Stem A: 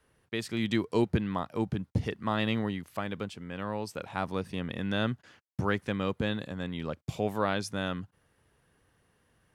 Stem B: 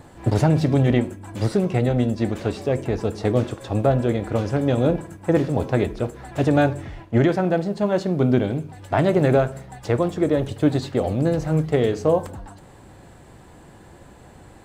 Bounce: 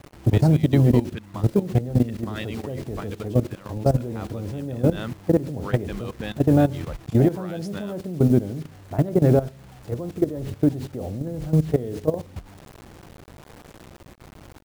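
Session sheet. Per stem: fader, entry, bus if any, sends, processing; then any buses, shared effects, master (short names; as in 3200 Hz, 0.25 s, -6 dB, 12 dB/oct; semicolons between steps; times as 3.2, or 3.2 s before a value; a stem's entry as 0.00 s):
+2.0 dB, 0.00 s, no send, reverb removal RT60 0.68 s
-4.0 dB, 0.00 s, no send, tilt shelf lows +9 dB, about 820 Hz; requantised 6-bit, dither none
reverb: off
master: level quantiser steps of 15 dB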